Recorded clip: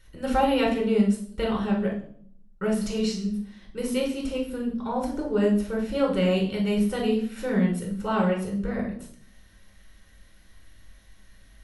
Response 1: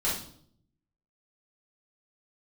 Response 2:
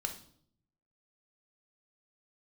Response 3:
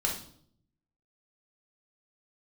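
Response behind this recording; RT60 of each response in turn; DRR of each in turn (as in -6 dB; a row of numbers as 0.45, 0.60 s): 3; 0.60, 0.60, 0.60 s; -9.0, 4.0, -2.0 dB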